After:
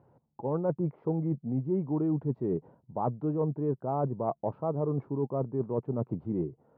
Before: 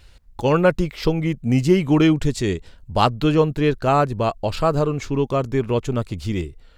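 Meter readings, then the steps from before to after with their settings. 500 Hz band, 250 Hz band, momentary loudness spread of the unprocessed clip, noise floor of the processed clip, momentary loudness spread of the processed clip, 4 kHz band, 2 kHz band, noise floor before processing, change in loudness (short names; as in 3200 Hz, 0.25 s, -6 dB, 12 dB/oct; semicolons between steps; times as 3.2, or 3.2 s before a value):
-11.0 dB, -11.0 dB, 9 LU, -72 dBFS, 4 LU, under -40 dB, under -30 dB, -49 dBFS, -11.5 dB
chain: Chebyshev band-pass 130–930 Hz, order 3; reverse; compressor 6:1, threshold -27 dBFS, peak gain reduction 15.5 dB; reverse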